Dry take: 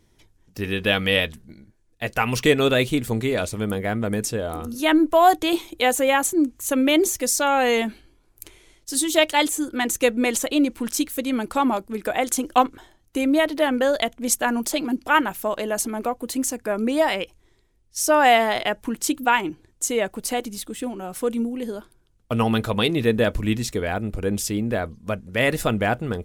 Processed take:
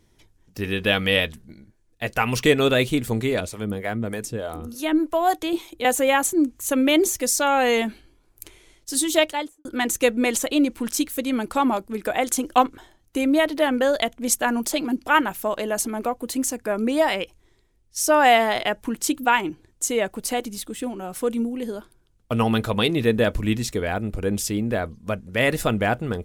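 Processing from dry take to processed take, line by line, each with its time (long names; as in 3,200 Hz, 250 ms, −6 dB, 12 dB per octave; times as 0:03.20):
0:03.40–0:05.85: two-band tremolo in antiphase 3.3 Hz, crossover 440 Hz
0:09.12–0:09.65: fade out and dull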